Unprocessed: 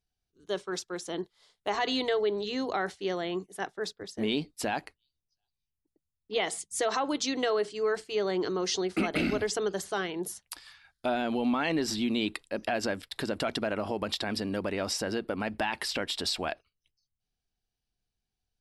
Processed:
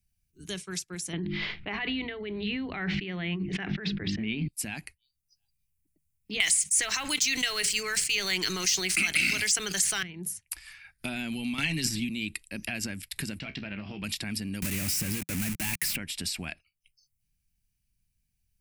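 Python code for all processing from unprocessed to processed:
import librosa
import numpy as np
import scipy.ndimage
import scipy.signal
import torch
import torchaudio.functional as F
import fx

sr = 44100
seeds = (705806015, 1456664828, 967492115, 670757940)

y = fx.chain(x, sr, fx.bessel_lowpass(hz=1900.0, order=6),
    fx.hum_notches(base_hz=50, count=7),
    fx.env_flatten(amount_pct=100), at=(1.13, 4.48))
y = fx.chain(y, sr, fx.weighting(curve='ITU-R 468'),
    fx.leveller(passes=1),
    fx.env_flatten(amount_pct=70), at=(6.4, 10.03))
y = fx.chain(y, sr, fx.comb(ms=7.2, depth=0.55),
    fx.transient(attack_db=4, sustain_db=12),
    fx.band_squash(depth_pct=100), at=(11.58, 12.09))
y = fx.chain(y, sr, fx.bessel_lowpass(hz=2900.0, order=4),
    fx.comb_fb(f0_hz=66.0, decay_s=0.18, harmonics='all', damping=0.0, mix_pct=80),
    fx.doppler_dist(depth_ms=0.11), at=(13.39, 14.04))
y = fx.chain(y, sr, fx.low_shelf(hz=99.0, db=7.0),
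    fx.quant_companded(bits=2), at=(14.62, 15.96))
y = fx.noise_reduce_blind(y, sr, reduce_db=12)
y = fx.curve_eq(y, sr, hz=(170.0, 500.0, 1200.0, 2400.0, 3500.0, 9700.0), db=(0, -22, -18, -2, -13, 2))
y = fx.band_squash(y, sr, depth_pct=70)
y = y * 10.0 ** (1.0 / 20.0)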